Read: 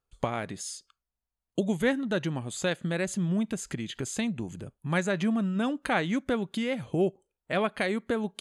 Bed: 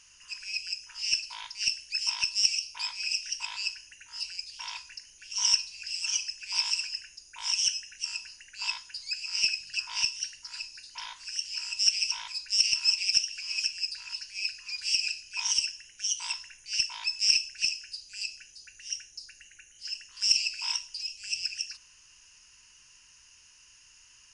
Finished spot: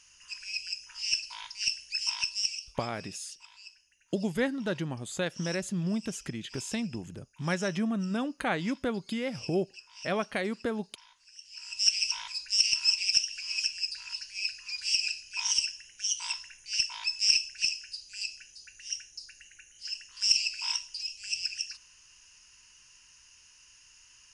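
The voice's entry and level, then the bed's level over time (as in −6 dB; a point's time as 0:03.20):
2.55 s, −3.0 dB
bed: 0:02.19 −1.5 dB
0:03.13 −17.5 dB
0:11.36 −17.5 dB
0:11.86 −0.5 dB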